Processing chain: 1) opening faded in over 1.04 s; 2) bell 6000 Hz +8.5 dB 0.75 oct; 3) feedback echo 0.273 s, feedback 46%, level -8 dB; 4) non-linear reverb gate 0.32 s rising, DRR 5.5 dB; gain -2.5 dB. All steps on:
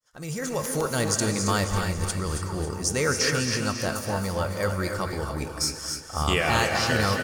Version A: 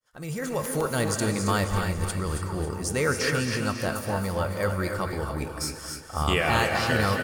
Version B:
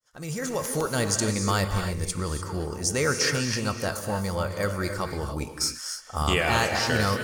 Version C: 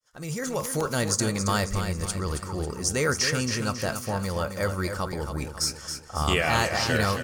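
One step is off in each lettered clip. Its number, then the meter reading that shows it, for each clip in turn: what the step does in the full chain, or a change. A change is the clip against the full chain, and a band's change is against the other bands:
2, 8 kHz band -5.0 dB; 3, echo-to-direct -2.5 dB to -5.5 dB; 4, echo-to-direct -2.5 dB to -7.0 dB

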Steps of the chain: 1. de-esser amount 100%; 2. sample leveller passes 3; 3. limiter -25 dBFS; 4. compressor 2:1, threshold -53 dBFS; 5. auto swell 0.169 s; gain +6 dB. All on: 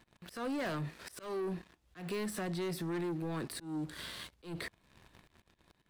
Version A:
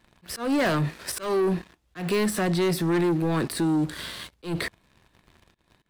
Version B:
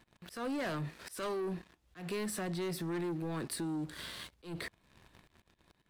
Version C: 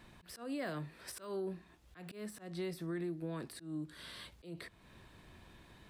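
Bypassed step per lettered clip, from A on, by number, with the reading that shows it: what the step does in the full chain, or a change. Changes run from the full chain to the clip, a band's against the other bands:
4, mean gain reduction 11.0 dB; 1, 8 kHz band +3.0 dB; 2, momentary loudness spread change +9 LU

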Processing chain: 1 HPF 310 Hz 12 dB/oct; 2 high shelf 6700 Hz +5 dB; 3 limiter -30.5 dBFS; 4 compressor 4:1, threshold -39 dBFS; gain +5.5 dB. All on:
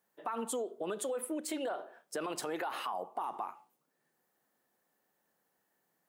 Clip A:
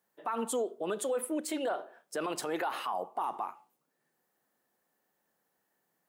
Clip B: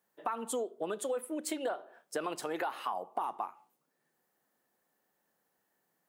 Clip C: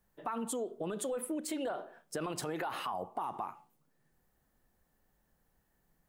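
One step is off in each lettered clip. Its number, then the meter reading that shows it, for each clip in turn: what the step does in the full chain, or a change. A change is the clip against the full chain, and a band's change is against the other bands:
4, mean gain reduction 2.5 dB; 3, mean gain reduction 3.5 dB; 1, 125 Hz band +10.0 dB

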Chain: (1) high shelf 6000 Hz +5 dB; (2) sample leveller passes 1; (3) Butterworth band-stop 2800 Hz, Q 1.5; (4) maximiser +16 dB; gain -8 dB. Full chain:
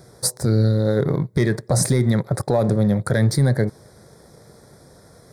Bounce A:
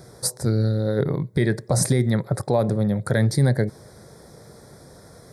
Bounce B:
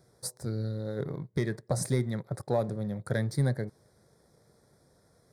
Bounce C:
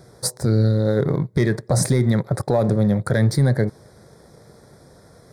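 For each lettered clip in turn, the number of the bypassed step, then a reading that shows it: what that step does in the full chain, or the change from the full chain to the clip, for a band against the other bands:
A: 2, crest factor change +2.5 dB; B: 4, crest factor change +6.0 dB; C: 1, 8 kHz band -2.5 dB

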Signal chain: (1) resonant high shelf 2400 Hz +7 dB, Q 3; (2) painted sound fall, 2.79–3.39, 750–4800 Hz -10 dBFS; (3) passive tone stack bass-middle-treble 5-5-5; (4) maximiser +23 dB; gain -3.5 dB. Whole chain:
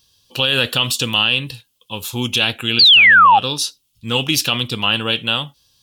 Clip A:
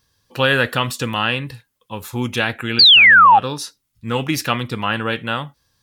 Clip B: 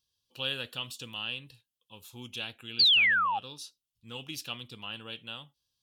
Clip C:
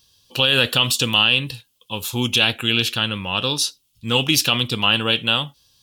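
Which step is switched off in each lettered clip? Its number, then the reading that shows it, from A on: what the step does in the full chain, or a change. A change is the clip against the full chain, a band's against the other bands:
1, 8 kHz band -8.0 dB; 4, crest factor change +5.5 dB; 2, 1 kHz band -11.5 dB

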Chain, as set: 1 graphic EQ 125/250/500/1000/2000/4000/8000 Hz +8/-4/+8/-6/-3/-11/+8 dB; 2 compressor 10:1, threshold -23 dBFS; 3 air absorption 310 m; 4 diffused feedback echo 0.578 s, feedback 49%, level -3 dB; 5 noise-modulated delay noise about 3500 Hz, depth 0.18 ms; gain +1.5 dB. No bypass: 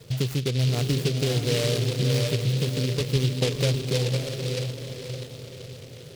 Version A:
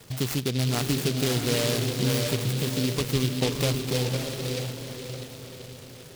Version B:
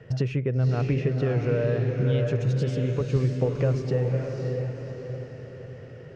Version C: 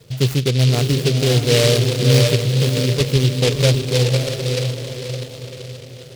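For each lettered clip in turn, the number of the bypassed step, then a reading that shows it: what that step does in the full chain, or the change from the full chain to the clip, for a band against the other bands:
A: 1, momentary loudness spread change +1 LU; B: 5, 4 kHz band -17.5 dB; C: 2, mean gain reduction 5.0 dB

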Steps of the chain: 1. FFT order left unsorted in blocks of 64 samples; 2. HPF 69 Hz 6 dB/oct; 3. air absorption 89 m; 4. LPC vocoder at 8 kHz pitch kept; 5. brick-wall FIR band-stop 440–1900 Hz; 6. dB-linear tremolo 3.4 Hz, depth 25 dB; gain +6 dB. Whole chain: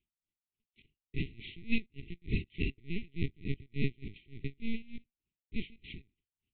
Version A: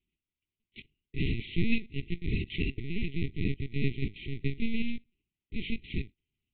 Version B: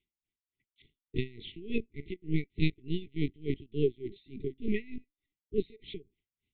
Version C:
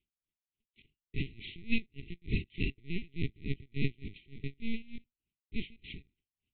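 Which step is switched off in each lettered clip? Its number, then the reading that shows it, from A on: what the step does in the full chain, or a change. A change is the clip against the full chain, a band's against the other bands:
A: 6, loudness change +5.0 LU; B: 1, 500 Hz band +11.0 dB; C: 3, 4 kHz band +2.0 dB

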